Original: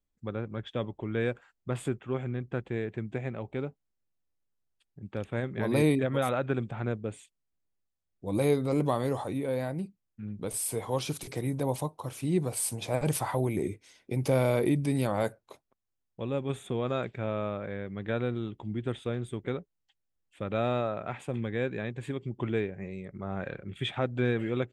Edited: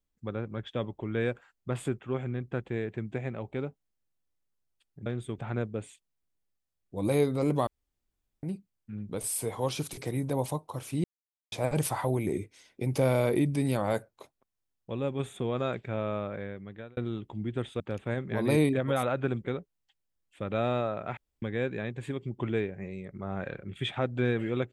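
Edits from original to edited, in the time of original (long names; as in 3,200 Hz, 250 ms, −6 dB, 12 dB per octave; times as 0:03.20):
0:05.06–0:06.68: swap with 0:19.10–0:19.42
0:08.97–0:09.73: fill with room tone
0:12.34–0:12.82: silence
0:17.66–0:18.27: fade out
0:21.17–0:21.42: fill with room tone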